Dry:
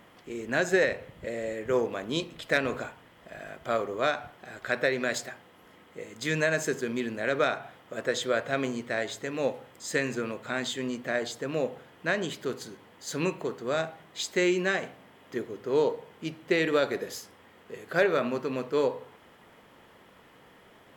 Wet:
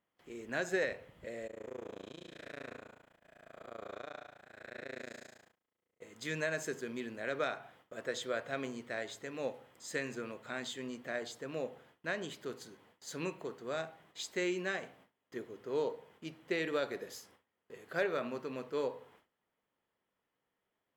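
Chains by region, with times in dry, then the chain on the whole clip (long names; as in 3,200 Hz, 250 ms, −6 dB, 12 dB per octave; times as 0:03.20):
0:01.47–0:06.02: spectrum smeared in time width 314 ms + amplitude modulation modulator 28 Hz, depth 100%
whole clip: low-shelf EQ 72 Hz +6 dB; noise gate with hold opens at −42 dBFS; low-shelf EQ 170 Hz −5.5 dB; level −9 dB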